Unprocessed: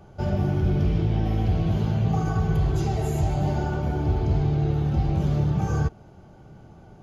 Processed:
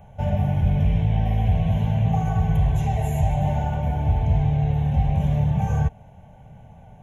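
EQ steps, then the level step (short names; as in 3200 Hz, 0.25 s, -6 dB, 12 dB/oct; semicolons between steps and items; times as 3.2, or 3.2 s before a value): fixed phaser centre 1300 Hz, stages 6; +4.0 dB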